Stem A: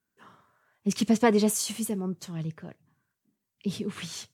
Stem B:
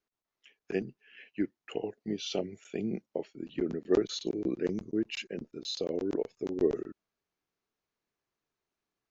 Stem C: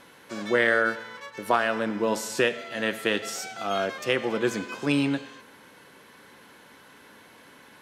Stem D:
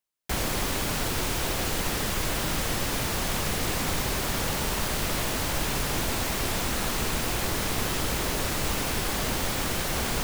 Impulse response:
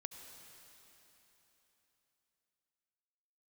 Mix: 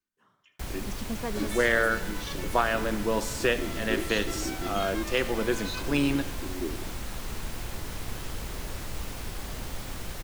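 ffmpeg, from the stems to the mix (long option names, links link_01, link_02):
-filter_complex "[0:a]volume=-13dB[link_01];[1:a]equalizer=frequency=640:width_type=o:width=0.91:gain=-13.5,aecho=1:1:3.3:0.96,volume=-5.5dB,asplit=2[link_02][link_03];[link_03]volume=-13dB[link_04];[2:a]adelay=1050,volume=-2dB[link_05];[3:a]lowshelf=frequency=100:gain=10.5,adelay=300,volume=-15dB,asplit=2[link_06][link_07];[link_07]volume=-3dB[link_08];[4:a]atrim=start_sample=2205[link_09];[link_08][link_09]afir=irnorm=-1:irlink=0[link_10];[link_04]aecho=0:1:77:1[link_11];[link_01][link_02][link_05][link_06][link_10][link_11]amix=inputs=6:normalize=0"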